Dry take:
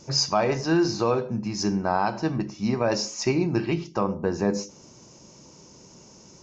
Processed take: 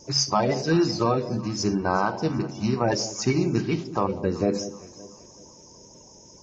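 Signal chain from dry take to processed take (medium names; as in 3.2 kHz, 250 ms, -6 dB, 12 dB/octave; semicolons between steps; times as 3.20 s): coarse spectral quantiser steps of 30 dB; echo whose repeats swap between lows and highs 189 ms, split 830 Hz, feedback 60%, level -13 dB; trim +1 dB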